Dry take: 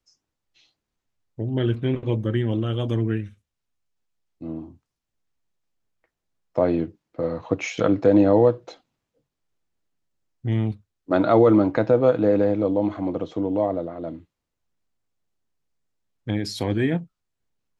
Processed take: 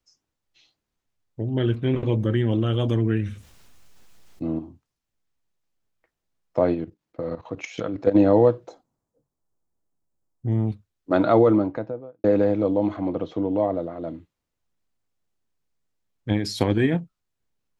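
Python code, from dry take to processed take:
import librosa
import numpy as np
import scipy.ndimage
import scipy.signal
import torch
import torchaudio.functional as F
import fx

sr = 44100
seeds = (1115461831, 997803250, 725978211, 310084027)

y = fx.env_flatten(x, sr, amount_pct=50, at=(1.87, 4.59))
y = fx.level_steps(y, sr, step_db=14, at=(6.73, 8.14), fade=0.02)
y = fx.curve_eq(y, sr, hz=(970.0, 2800.0, 7400.0), db=(0, -18, -2), at=(8.67, 10.67), fade=0.02)
y = fx.studio_fade_out(y, sr, start_s=11.21, length_s=1.03)
y = fx.lowpass(y, sr, hz=5200.0, slope=12, at=(12.96, 13.75))
y = fx.transient(y, sr, attack_db=7, sustain_db=2, at=(16.3, 16.99), fade=0.02)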